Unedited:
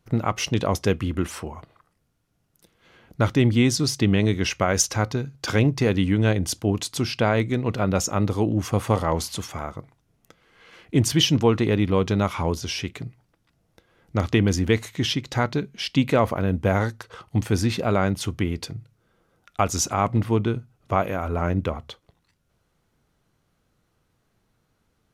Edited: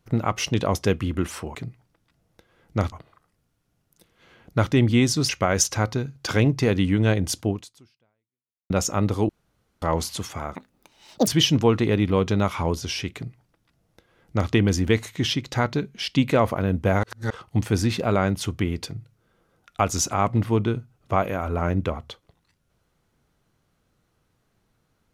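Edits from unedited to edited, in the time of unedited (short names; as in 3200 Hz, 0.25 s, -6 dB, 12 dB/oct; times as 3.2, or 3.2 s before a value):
3.92–4.48 cut
6.66–7.89 fade out exponential
8.48–9.01 room tone
9.74–11.07 speed 184%
12.94–14.31 copy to 1.55
16.83–17.1 reverse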